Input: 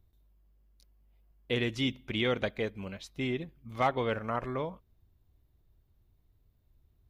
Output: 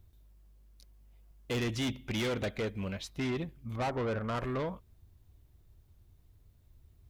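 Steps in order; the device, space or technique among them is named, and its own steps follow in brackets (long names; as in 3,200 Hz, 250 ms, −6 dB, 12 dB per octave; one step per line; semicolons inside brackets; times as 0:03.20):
0:03.75–0:04.33: low-pass filter 1,100 Hz → 1,800 Hz 12 dB per octave
open-reel tape (soft clipping −34 dBFS, distortion −7 dB; parametric band 85 Hz +4 dB 1.1 octaves; white noise bed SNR 46 dB)
level +4.5 dB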